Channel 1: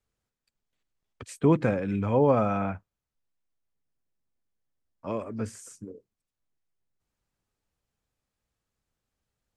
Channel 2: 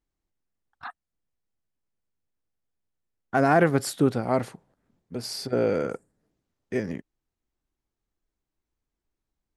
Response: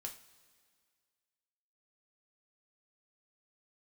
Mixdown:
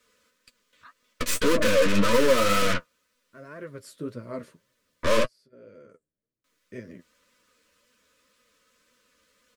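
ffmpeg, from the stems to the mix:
-filter_complex "[0:a]asplit=2[link_01][link_02];[link_02]highpass=frequency=720:poles=1,volume=36dB,asoftclip=type=tanh:threshold=-10dB[link_03];[link_01][link_03]amix=inputs=2:normalize=0,lowpass=frequency=5600:poles=1,volume=-6dB,aecho=1:1:4:0.66,aeval=exprs='0.473*(cos(1*acos(clip(val(0)/0.473,-1,1)))-cos(1*PI/2))+0.119*(cos(8*acos(clip(val(0)/0.473,-1,1)))-cos(8*PI/2))':channel_layout=same,volume=-4.5dB,asplit=3[link_04][link_05][link_06];[link_04]atrim=end=5.25,asetpts=PTS-STARTPTS,afade=type=out:start_time=5.246:duration=0.004:curve=hsin[link_07];[link_05]atrim=start=5.25:end=6.44,asetpts=PTS-STARTPTS,volume=0[link_08];[link_06]atrim=start=6.44,asetpts=PTS-STARTPTS,afade=type=in:duration=0.004:curve=hsin[link_09];[link_07][link_08][link_09]concat=n=3:v=0:a=1,asplit=2[link_10][link_11];[1:a]volume=-7.5dB[link_12];[link_11]apad=whole_len=421803[link_13];[link_12][link_13]sidechaincompress=threshold=-36dB:ratio=16:attack=16:release=1050[link_14];[link_10][link_14]amix=inputs=2:normalize=0,flanger=delay=8:depth=5.2:regen=28:speed=1.9:shape=sinusoidal,asuperstop=centerf=770:order=4:qfactor=2,equalizer=frequency=630:width_type=o:width=0.42:gain=7"

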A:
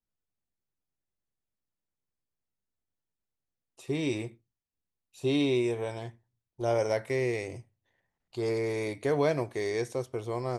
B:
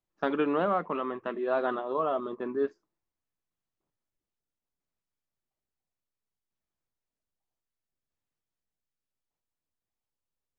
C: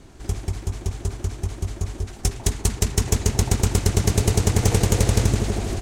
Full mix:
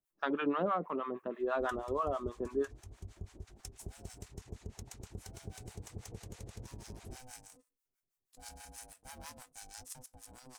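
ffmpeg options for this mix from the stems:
ffmpeg -i stem1.wav -i stem2.wav -i stem3.wav -filter_complex "[0:a]aexciter=amount=15.5:drive=7.3:freq=5400,aeval=exprs='val(0)*sgn(sin(2*PI*380*n/s))':channel_layout=same,volume=-19.5dB[link_01];[1:a]volume=-0.5dB[link_02];[2:a]adelay=1400,volume=-14.5dB[link_03];[link_01][link_03]amix=inputs=2:normalize=0,acompressor=threshold=-39dB:ratio=6,volume=0dB[link_04];[link_02][link_04]amix=inputs=2:normalize=0,acrossover=split=710[link_05][link_06];[link_05]aeval=exprs='val(0)*(1-1/2+1/2*cos(2*PI*6.2*n/s))':channel_layout=same[link_07];[link_06]aeval=exprs='val(0)*(1-1/2-1/2*cos(2*PI*6.2*n/s))':channel_layout=same[link_08];[link_07][link_08]amix=inputs=2:normalize=0" out.wav

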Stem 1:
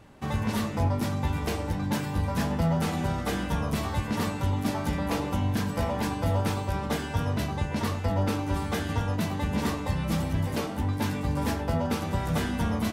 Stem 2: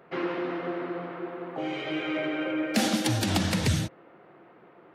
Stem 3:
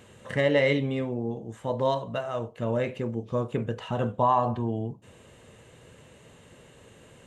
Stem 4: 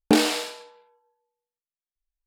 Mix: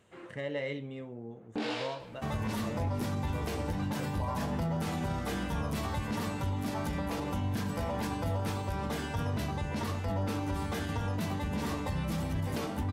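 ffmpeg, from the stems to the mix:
ffmpeg -i stem1.wav -i stem2.wav -i stem3.wav -i stem4.wav -filter_complex "[0:a]adelay=2000,volume=-2.5dB[link_01];[1:a]volume=-18dB[link_02];[2:a]volume=-13dB,asplit=2[link_03][link_04];[3:a]lowpass=3600,flanger=delay=15:depth=6.1:speed=1.3,adelay=1450,volume=-5dB[link_05];[link_04]apad=whole_len=218168[link_06];[link_02][link_06]sidechaincompress=threshold=-56dB:ratio=8:attack=7.1:release=120[link_07];[link_01][link_07][link_03][link_05]amix=inputs=4:normalize=0,alimiter=level_in=1dB:limit=-24dB:level=0:latency=1:release=46,volume=-1dB" out.wav

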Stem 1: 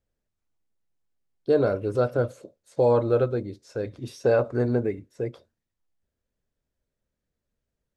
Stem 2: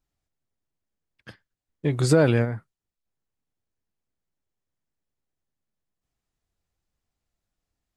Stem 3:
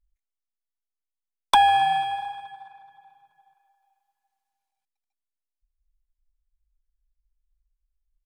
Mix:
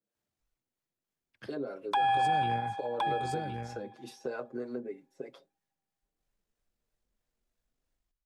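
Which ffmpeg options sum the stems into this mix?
ffmpeg -i stem1.wav -i stem2.wav -i stem3.wav -filter_complex "[0:a]highpass=frequency=170:width=0.5412,highpass=frequency=170:width=1.3066,acrossover=split=510[link_01][link_02];[link_01]aeval=exprs='val(0)*(1-0.7/2+0.7/2*cos(2*PI*3.1*n/s))':channel_layout=same[link_03];[link_02]aeval=exprs='val(0)*(1-0.7/2-0.7/2*cos(2*PI*3.1*n/s))':channel_layout=same[link_04];[link_03][link_04]amix=inputs=2:normalize=0,asplit=2[link_05][link_06];[link_06]adelay=6.4,afreqshift=0.3[link_07];[link_05][link_07]amix=inputs=2:normalize=1,volume=1.5dB,asplit=2[link_08][link_09];[1:a]acrossover=split=190|3000[link_10][link_11][link_12];[link_11]acompressor=threshold=-22dB:ratio=6[link_13];[link_10][link_13][link_12]amix=inputs=3:normalize=0,tremolo=f=49:d=0.4,adelay=150,volume=-2.5dB,asplit=2[link_14][link_15];[link_15]volume=-13.5dB[link_16];[2:a]bass=frequency=250:gain=-9,treble=frequency=4000:gain=-11,adelay=400,volume=-2.5dB,asplit=2[link_17][link_18];[link_18]volume=-12.5dB[link_19];[link_09]apad=whole_len=357772[link_20];[link_14][link_20]sidechaincompress=threshold=-29dB:ratio=8:attack=16:release=208[link_21];[link_08][link_21]amix=inputs=2:normalize=0,highpass=100,acompressor=threshold=-38dB:ratio=2.5,volume=0dB[link_22];[link_16][link_19]amix=inputs=2:normalize=0,aecho=0:1:1066:1[link_23];[link_17][link_22][link_23]amix=inputs=3:normalize=0,alimiter=limit=-20.5dB:level=0:latency=1:release=22" out.wav

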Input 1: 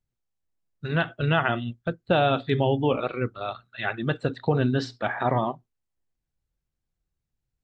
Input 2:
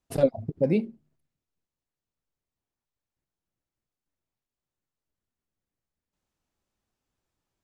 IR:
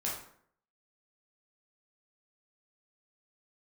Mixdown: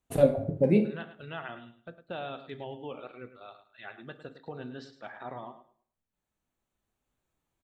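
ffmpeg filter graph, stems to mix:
-filter_complex "[0:a]equalizer=frequency=83:width=0.73:gain=-10.5,volume=-17dB,asplit=4[link_01][link_02][link_03][link_04];[link_02]volume=-16dB[link_05];[link_03]volume=-11dB[link_06];[1:a]equalizer=frequency=5100:width=5.4:gain=-14,deesser=0.7,volume=-3.5dB,asplit=2[link_07][link_08];[link_08]volume=-4dB[link_09];[link_04]apad=whole_len=336618[link_10];[link_07][link_10]sidechaincompress=threshold=-56dB:ratio=8:attack=16:release=1190[link_11];[2:a]atrim=start_sample=2205[link_12];[link_05][link_09]amix=inputs=2:normalize=0[link_13];[link_13][link_12]afir=irnorm=-1:irlink=0[link_14];[link_06]aecho=0:1:106|212|318|424:1|0.22|0.0484|0.0106[link_15];[link_01][link_11][link_14][link_15]amix=inputs=4:normalize=0"

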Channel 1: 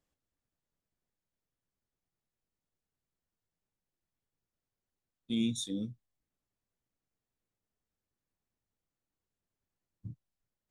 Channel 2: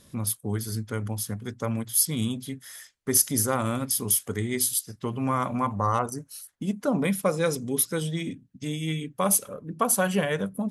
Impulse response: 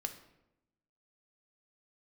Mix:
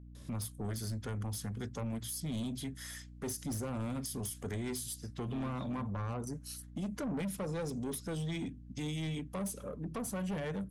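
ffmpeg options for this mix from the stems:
-filter_complex "[0:a]lowpass=frequency=3200:width=0.5412,lowpass=frequency=3200:width=1.3066,volume=-8dB[link_01];[1:a]lowpass=9700,acrossover=split=420[link_02][link_03];[link_03]acompressor=threshold=-34dB:ratio=5[link_04];[link_02][link_04]amix=inputs=2:normalize=0,adelay=150,volume=-1dB[link_05];[link_01][link_05]amix=inputs=2:normalize=0,asoftclip=type=tanh:threshold=-29.5dB,aeval=exprs='val(0)+0.00316*(sin(2*PI*60*n/s)+sin(2*PI*2*60*n/s)/2+sin(2*PI*3*60*n/s)/3+sin(2*PI*4*60*n/s)/4+sin(2*PI*5*60*n/s)/5)':channel_layout=same,alimiter=level_in=8.5dB:limit=-24dB:level=0:latency=1,volume=-8.5dB"

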